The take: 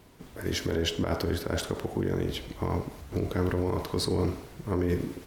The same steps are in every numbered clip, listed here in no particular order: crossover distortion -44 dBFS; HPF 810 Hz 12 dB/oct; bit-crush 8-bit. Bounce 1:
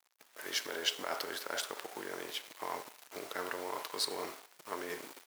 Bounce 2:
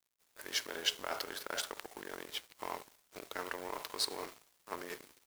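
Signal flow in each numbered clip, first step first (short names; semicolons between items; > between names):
bit-crush > crossover distortion > HPF; bit-crush > HPF > crossover distortion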